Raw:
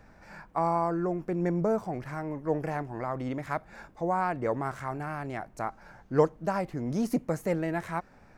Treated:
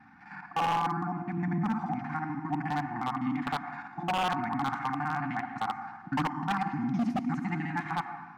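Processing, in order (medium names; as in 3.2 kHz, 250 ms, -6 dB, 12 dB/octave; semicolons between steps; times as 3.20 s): time reversed locally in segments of 51 ms; band-pass 200–2600 Hz; in parallel at -2.5 dB: level held to a coarse grid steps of 13 dB; on the sum: comb of notches 330 Hz; on a send at -8 dB: reverberation RT60 1.2 s, pre-delay 87 ms; on the sum: FFT band-reject 350–700 Hz; wavefolder -24.5 dBFS; trim +2.5 dB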